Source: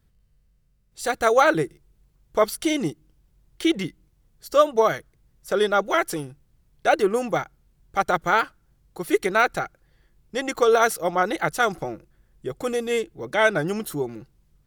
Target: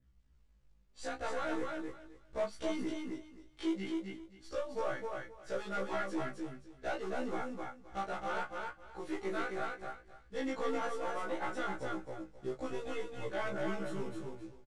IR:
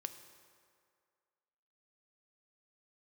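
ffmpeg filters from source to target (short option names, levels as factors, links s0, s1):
-filter_complex "[0:a]aeval=exprs='if(lt(val(0),0),0.708*val(0),val(0))':c=same,asettb=1/sr,asplit=3[s0][s1][s2];[s0]atrim=end=2.834[s3];[s1]atrim=start=2.83:end=4.87,asetpts=PTS-STARTPTS,afade=t=in:d=0.004:c=qsin,afade=t=out:st=2.036:d=0.004:c=qsin,acrossover=split=330|830[s4][s5][s6];[s4]acompressor=threshold=0.0126:ratio=4[s7];[s5]acompressor=threshold=0.0398:ratio=4[s8];[s6]acompressor=threshold=0.02:ratio=4[s9];[s7][s8][s9]amix=inputs=3:normalize=0[s10];[s2]atrim=start=4.866[s11];[s3][s10]acrossfade=d=0.004:c1=hsin:c2=qsin[s12];[s12][s11]acrossfade=d=0.004:c1=qsin:c2=hsin,aemphasis=mode=reproduction:type=50kf,acompressor=threshold=0.0398:ratio=2.5,asplit=2[s13][s14];[s14]adelay=19,volume=0.501[s15];[s13][s15]amix=inputs=2:normalize=0,flanger=delay=16:depth=5.5:speed=0.69,asoftclip=type=tanh:threshold=0.0422,acrusher=bits=5:mode=log:mix=0:aa=0.000001,lowpass=f=8600:w=0.5412,lowpass=f=8600:w=1.3066,aecho=1:1:263|526|789:0.668|0.127|0.0241,adynamicequalizer=threshold=0.00112:dfrequency=4800:dqfactor=1:tfrequency=4800:tqfactor=1:attack=5:release=100:ratio=0.375:range=2.5:mode=cutabove:tftype=bell,afftfilt=real='re*1.73*eq(mod(b,3),0)':imag='im*1.73*eq(mod(b,3),0)':win_size=2048:overlap=0.75,volume=0.891"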